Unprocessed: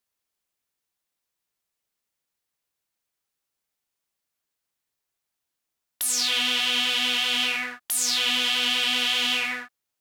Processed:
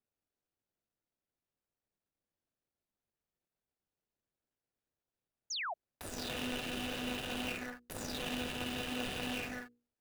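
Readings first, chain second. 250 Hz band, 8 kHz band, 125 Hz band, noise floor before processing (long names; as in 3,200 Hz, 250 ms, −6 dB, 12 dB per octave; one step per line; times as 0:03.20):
−2.0 dB, −19.0 dB, can't be measured, −84 dBFS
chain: running median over 41 samples
mains-hum notches 60/120/180/240/300/360/420/480 Hz
sound drawn into the spectrogram fall, 0:05.50–0:05.74, 600–7,100 Hz −39 dBFS
level +1 dB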